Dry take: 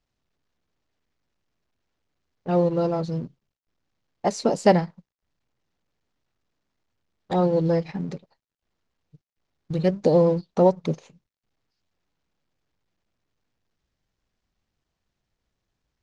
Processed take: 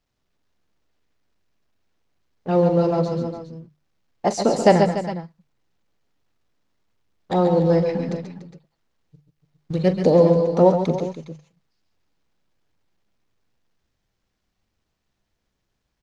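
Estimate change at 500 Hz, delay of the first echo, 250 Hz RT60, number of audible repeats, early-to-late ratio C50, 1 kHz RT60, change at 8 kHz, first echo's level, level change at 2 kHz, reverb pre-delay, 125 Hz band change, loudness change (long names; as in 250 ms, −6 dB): +4.0 dB, 42 ms, no reverb audible, 4, no reverb audible, no reverb audible, +4.0 dB, −13.5 dB, +4.0 dB, no reverb audible, +3.5 dB, +3.5 dB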